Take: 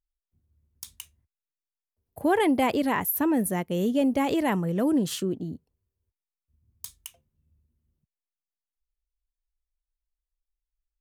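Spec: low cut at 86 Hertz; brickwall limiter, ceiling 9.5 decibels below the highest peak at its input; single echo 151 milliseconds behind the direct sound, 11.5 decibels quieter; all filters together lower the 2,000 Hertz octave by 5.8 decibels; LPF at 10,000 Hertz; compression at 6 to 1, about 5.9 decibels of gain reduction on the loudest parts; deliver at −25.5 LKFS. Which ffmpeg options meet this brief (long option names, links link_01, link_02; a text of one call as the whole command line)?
ffmpeg -i in.wav -af "highpass=86,lowpass=10000,equalizer=frequency=2000:width_type=o:gain=-7,acompressor=threshold=-26dB:ratio=6,alimiter=level_in=3dB:limit=-24dB:level=0:latency=1,volume=-3dB,aecho=1:1:151:0.266,volume=8.5dB" out.wav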